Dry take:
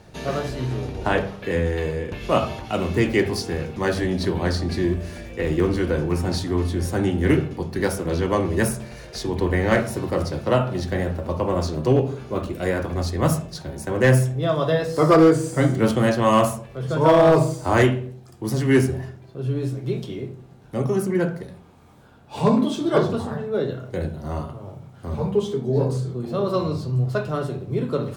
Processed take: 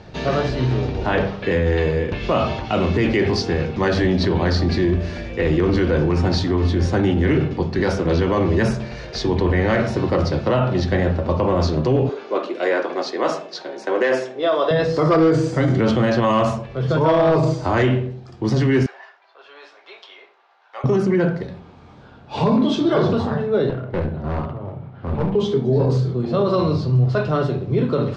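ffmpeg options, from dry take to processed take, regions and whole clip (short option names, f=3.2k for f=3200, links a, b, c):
-filter_complex "[0:a]asettb=1/sr,asplit=3[a][b][c];[a]atrim=end=12.094[d];[b]atrim=start=12.09:end=14.71,asetpts=PTS-STARTPTS,afade=t=in:d=0.004:c=qsin,afade=t=out:st=2.616:d=0.004:c=qsin,highpass=f=330:w=0.5412,highpass=f=330:w=1.3066,highshelf=f=10k:g=-8.5[e];[c]atrim=start=14.706[f];[d][e]acrossfade=d=0.004:c1=hsin:c2=qsin[g];[g][f]acrossfade=d=0.004:c1=qsin:c2=hsin,asettb=1/sr,asplit=3[h][i][j];[h]atrim=end=18.864[k];[i]atrim=start=18.86:end=20.84,asetpts=PTS-STARTPTS,afade=t=in:d=0.004:c=qsin,afade=t=out:st=1.976:d=0.004:c=qsin,highpass=f=840:w=0.5412,highpass=f=840:w=1.3066,aemphasis=mode=reproduction:type=75kf[l];[j]atrim=start=20.836[m];[k][l]acrossfade=d=0.004:c1=hsin:c2=qsin[n];[n][m]acrossfade=d=0.004:c1=qsin:c2=hsin,asettb=1/sr,asplit=3[o][p][q];[o]atrim=end=23.694[r];[p]atrim=start=23.69:end=25.35,asetpts=PTS-STARTPTS,afade=t=in:d=0.004:c=qsin,afade=t=out:st=1.656:d=0.004:c=qsin,lowpass=2.4k,aeval=exprs='clip(val(0),-1,0.0299)':c=same[s];[q]atrim=start=25.346[t];[r][s]acrossfade=d=0.004:c1=hsin:c2=qsin[u];[u][t]acrossfade=d=0.004:c1=qsin:c2=hsin,lowpass=f=5.3k:w=0.5412,lowpass=f=5.3k:w=1.3066,alimiter=limit=-16.5dB:level=0:latency=1:release=16,volume=6.5dB"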